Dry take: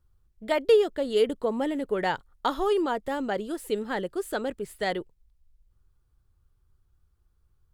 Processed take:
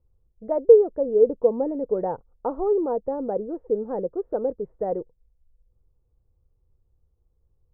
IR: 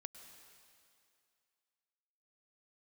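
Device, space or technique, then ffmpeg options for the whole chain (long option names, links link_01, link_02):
under water: -af "lowpass=frequency=870:width=0.5412,lowpass=frequency=870:width=1.3066,equalizer=frequency=490:width_type=o:width=0.29:gain=11.5"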